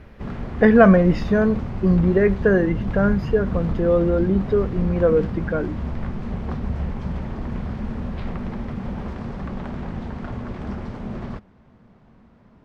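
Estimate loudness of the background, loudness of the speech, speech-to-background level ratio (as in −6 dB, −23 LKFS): −29.5 LKFS, −19.0 LKFS, 10.5 dB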